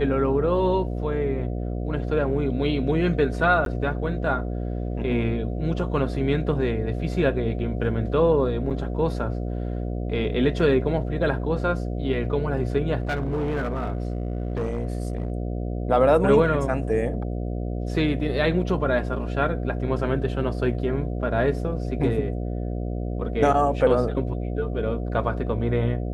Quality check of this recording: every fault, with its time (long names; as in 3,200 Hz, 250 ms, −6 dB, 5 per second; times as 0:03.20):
mains buzz 60 Hz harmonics 12 −28 dBFS
0:03.65–0:03.66: drop-out 12 ms
0:08.70–0:08.71: drop-out 7.4 ms
0:13.00–0:15.32: clipping −21.5 dBFS